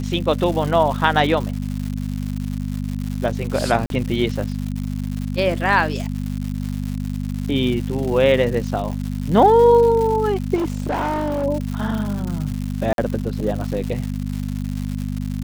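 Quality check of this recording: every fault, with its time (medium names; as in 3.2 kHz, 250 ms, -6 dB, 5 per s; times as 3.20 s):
crackle 230 per s -26 dBFS
hum 50 Hz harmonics 5 -25 dBFS
3.86–3.90 s: dropout 42 ms
10.55–11.45 s: clipped -18.5 dBFS
12.93–12.98 s: dropout 52 ms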